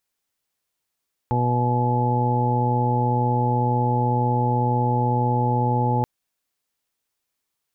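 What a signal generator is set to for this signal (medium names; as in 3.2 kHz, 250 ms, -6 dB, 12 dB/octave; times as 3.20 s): steady additive tone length 4.73 s, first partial 122 Hz, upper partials -6/-10/-8/-16/-16/-1.5 dB, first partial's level -21 dB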